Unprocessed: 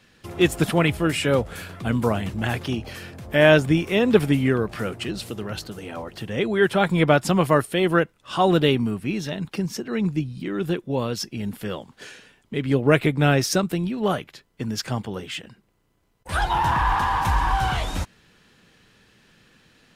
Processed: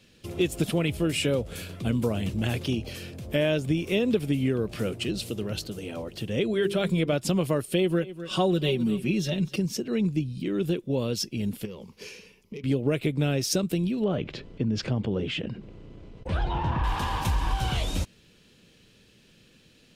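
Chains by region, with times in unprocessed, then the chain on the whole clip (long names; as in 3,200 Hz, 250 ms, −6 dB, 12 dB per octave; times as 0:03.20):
0:06.51–0:07.13: parametric band 850 Hz −8.5 dB 0.25 octaves + mains-hum notches 50/100/150/200/250/300/350/400/450 Hz
0:07.66–0:09.56: comb filter 5.4 ms, depth 75% + single-tap delay 251 ms −20 dB
0:11.65–0:12.64: phase distortion by the signal itself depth 0.085 ms + EQ curve with evenly spaced ripples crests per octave 0.83, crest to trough 10 dB + downward compressor 10 to 1, threshold −34 dBFS
0:14.04–0:16.84: head-to-tape spacing loss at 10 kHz 30 dB + envelope flattener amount 50%
whole clip: flat-topped bell 1,200 Hz −9 dB; downward compressor 6 to 1, threshold −21 dBFS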